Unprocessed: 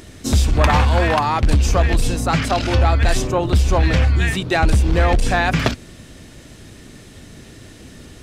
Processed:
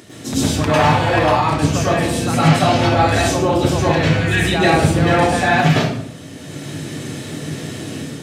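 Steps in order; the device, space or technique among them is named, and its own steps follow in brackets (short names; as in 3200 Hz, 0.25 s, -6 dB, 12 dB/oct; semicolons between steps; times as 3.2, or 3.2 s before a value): far laptop microphone (reverb RT60 0.70 s, pre-delay 96 ms, DRR -9 dB; HPF 110 Hz 24 dB/oct; AGC gain up to 4 dB); gain -1 dB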